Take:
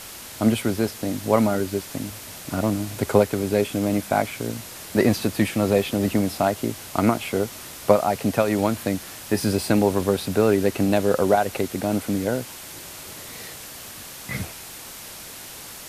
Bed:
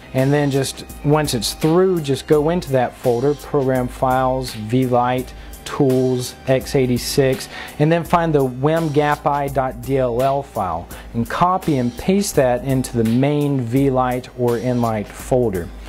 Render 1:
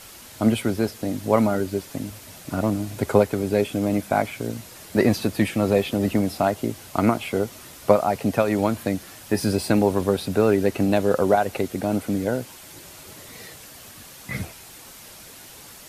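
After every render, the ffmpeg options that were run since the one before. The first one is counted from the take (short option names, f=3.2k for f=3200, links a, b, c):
-af "afftdn=nr=6:nf=-39"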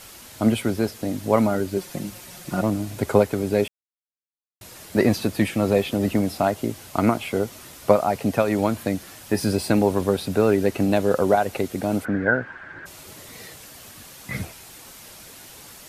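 -filter_complex "[0:a]asettb=1/sr,asplit=3[a][b][c];[a]atrim=end=1.764[d];[b]atrim=start=1.76:end=2.62,asetpts=PTS-STARTPTS,afade=t=in:d=0.004:c=qsin,afade=t=out:st=0.856:d=0.004:c=qsin,aecho=1:1:5.6:0.65,atrim=end_sample=37926[e];[c]atrim=start=2.616[f];[d][e]acrossfade=d=0.004:c1=hsin:c2=qsin[g];[g][f]acrossfade=d=0.004:c1=qsin:c2=hsin,asplit=3[h][i][j];[h]afade=t=out:st=12.04:d=0.02[k];[i]lowpass=f=1.6k:t=q:w=11,afade=t=in:st=12.04:d=0.02,afade=t=out:st=12.85:d=0.02[l];[j]afade=t=in:st=12.85:d=0.02[m];[k][l][m]amix=inputs=3:normalize=0,asplit=3[n][o][p];[n]atrim=end=3.68,asetpts=PTS-STARTPTS,afade=t=out:st=3.676:d=0.004:c=hsin[q];[o]atrim=start=3.68:end=4.61,asetpts=PTS-STARTPTS,volume=0[r];[p]atrim=start=4.61,asetpts=PTS-STARTPTS,afade=t=in:d=0.004:c=hsin[s];[q][r][s]concat=n=3:v=0:a=1"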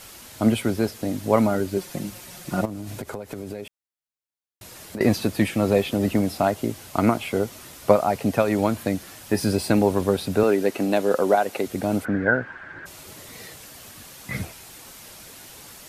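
-filter_complex "[0:a]asettb=1/sr,asplit=3[a][b][c];[a]atrim=end=2.654[d];[b]atrim=start=2.65:end=5.01,asetpts=PTS-STARTPTS,afade=t=in:d=0.004:c=qsin,afade=t=out:st=2.356:d=0.004:c=qsin,acompressor=threshold=-28dB:ratio=20:attack=3.2:release=140:knee=1:detection=peak[e];[c]atrim=start=5.006[f];[d][e]acrossfade=d=0.004:c1=hsin:c2=qsin[g];[g][f]acrossfade=d=0.004:c1=qsin:c2=hsin,asettb=1/sr,asplit=3[h][i][j];[h]atrim=end=10.434[k];[i]atrim=start=10.43:end=11.67,asetpts=PTS-STARTPTS,afade=t=in:d=0.004:c=qsin,afade=t=out:st=1.236:d=0.004:c=qsin,highpass=230[l];[j]atrim=start=11.666[m];[k][l]acrossfade=d=0.004:c1=hsin:c2=qsin[n];[n][m]acrossfade=d=0.004:c1=qsin:c2=hsin"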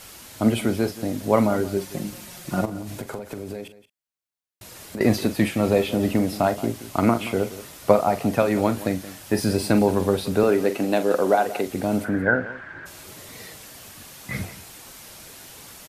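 -filter_complex "[0:a]asplit=2[a][b];[b]adelay=43,volume=-11.5dB[c];[a][c]amix=inputs=2:normalize=0,aecho=1:1:176:0.158"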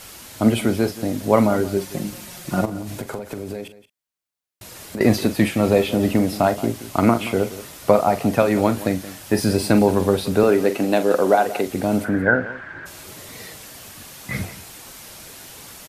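-af "volume=3dB,alimiter=limit=-1dB:level=0:latency=1"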